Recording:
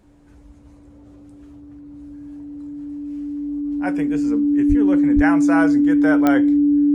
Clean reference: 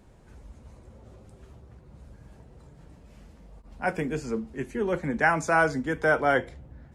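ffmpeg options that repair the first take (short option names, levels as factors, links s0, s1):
-filter_complex "[0:a]adeclick=t=4,bandreject=f=290:w=30,asplit=3[s0][s1][s2];[s0]afade=t=out:st=4.68:d=0.02[s3];[s1]highpass=f=140:w=0.5412,highpass=f=140:w=1.3066,afade=t=in:st=4.68:d=0.02,afade=t=out:st=4.8:d=0.02[s4];[s2]afade=t=in:st=4.8:d=0.02[s5];[s3][s4][s5]amix=inputs=3:normalize=0,asplit=3[s6][s7][s8];[s6]afade=t=out:st=5.15:d=0.02[s9];[s7]highpass=f=140:w=0.5412,highpass=f=140:w=1.3066,afade=t=in:st=5.15:d=0.02,afade=t=out:st=5.27:d=0.02[s10];[s8]afade=t=in:st=5.27:d=0.02[s11];[s9][s10][s11]amix=inputs=3:normalize=0"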